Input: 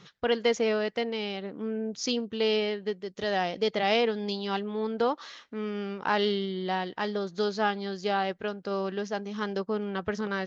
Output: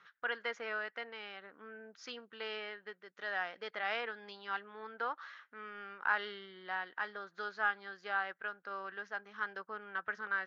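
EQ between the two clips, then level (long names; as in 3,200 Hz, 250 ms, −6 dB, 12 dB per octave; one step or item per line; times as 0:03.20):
resonant band-pass 1,500 Hz, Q 3.5
+2.0 dB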